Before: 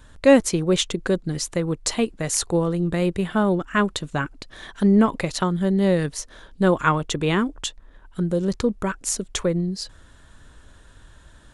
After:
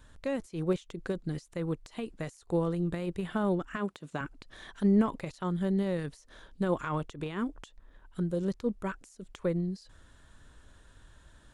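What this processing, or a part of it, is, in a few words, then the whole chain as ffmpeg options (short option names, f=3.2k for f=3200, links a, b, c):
de-esser from a sidechain: -filter_complex "[0:a]asplit=2[a][b];[b]highpass=6.1k,apad=whole_len=508481[c];[a][c]sidechaincompress=threshold=-49dB:ratio=12:attack=3.4:release=53,asettb=1/sr,asplit=3[d][e][f];[d]atrim=end=3.764[g];[e]atrim=start=3.76:end=4.21,asetpts=PTS-STARTPTS,afade=t=in:d=0.004:c=qsin,afade=t=out:st=0.446:d=0.004:c=qsin,highpass=160[h];[f]atrim=start=4.206[i];[g][h]acrossfade=d=0.004:c1=hsin:c2=qsin[j];[j][i]acrossfade=d=0.004:c1=qsin:c2=hsin,volume=-7.5dB"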